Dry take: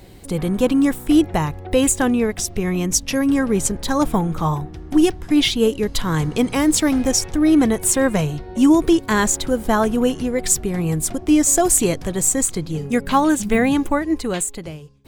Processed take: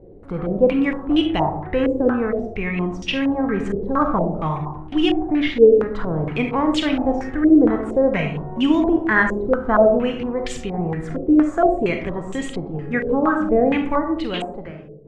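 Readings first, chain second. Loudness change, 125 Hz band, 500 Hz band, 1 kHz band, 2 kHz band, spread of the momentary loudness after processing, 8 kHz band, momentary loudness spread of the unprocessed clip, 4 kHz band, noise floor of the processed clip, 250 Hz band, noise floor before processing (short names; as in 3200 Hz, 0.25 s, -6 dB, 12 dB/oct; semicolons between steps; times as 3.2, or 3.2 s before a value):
-1.5 dB, -3.5 dB, +3.0 dB, +0.5 dB, +2.0 dB, 11 LU, under -25 dB, 8 LU, -4.0 dB, -35 dBFS, -1.5 dB, -37 dBFS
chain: digital reverb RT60 0.74 s, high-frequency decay 0.3×, pre-delay 5 ms, DRR 4 dB; stepped low-pass 4.3 Hz 470–3000 Hz; gain -5 dB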